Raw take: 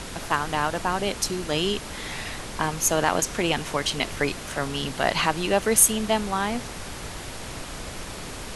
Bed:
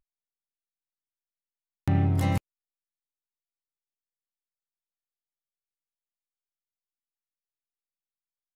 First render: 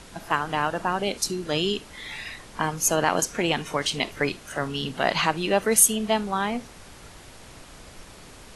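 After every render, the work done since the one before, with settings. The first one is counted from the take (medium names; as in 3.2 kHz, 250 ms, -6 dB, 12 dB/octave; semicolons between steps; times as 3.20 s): noise print and reduce 10 dB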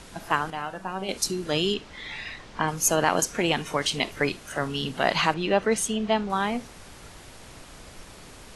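0.50–1.09 s: feedback comb 190 Hz, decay 0.28 s, mix 70%; 1.74–2.68 s: low-pass 5.4 kHz; 5.34–6.30 s: distance through air 98 m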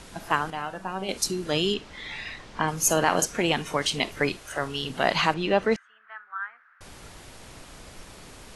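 2.71–3.26 s: flutter echo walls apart 8.6 m, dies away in 0.23 s; 4.37–4.90 s: peaking EQ 200 Hz -13.5 dB 0.65 oct; 5.76–6.81 s: Butterworth band-pass 1.5 kHz, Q 3.3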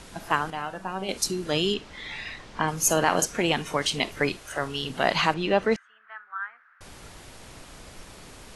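no audible change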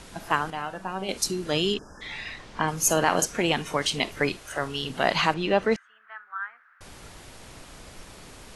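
1.78–2.01 s: spectral selection erased 1.8–4.9 kHz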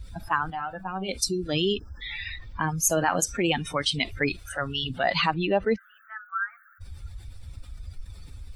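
expander on every frequency bin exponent 2; level flattener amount 50%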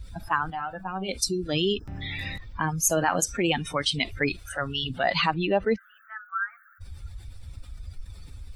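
add bed -15 dB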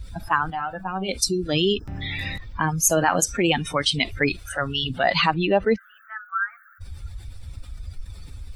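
trim +4 dB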